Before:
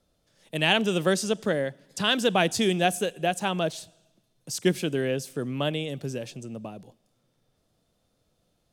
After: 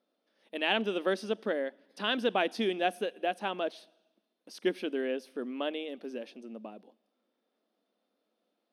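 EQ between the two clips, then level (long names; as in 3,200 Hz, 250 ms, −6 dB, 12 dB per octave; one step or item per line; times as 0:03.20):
moving average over 6 samples
linear-phase brick-wall high-pass 200 Hz
−5.0 dB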